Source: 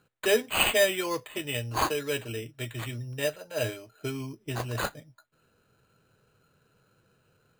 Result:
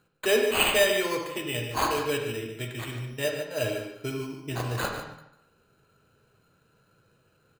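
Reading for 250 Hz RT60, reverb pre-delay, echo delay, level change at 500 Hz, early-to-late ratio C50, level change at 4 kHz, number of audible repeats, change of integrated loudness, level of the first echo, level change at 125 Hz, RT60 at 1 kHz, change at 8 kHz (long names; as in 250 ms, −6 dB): 0.75 s, 37 ms, 147 ms, +2.0 dB, 3.5 dB, +1.5 dB, 1, +1.5 dB, −10.0 dB, +1.0 dB, 0.75 s, +0.5 dB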